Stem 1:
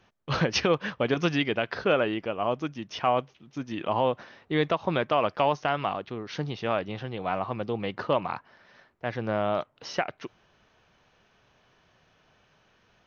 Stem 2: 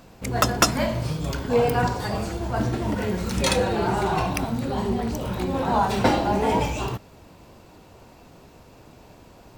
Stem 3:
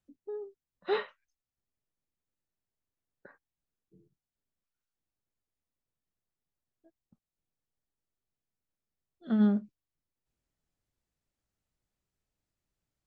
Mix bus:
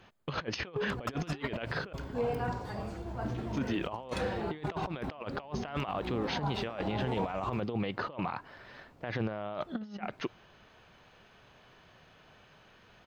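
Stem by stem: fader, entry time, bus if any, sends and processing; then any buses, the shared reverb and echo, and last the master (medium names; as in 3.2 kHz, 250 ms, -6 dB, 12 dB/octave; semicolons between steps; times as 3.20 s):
0.0 dB, 0.00 s, muted 1.93–3.28 s, no send, band-stop 5.7 kHz, Q 6.3
-16.0 dB, 0.65 s, no send, treble shelf 4.5 kHz -12 dB
-0.5 dB, 0.45 s, no send, none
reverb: none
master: compressor with a negative ratio -32 dBFS, ratio -0.5; peak limiter -22.5 dBFS, peak gain reduction 11.5 dB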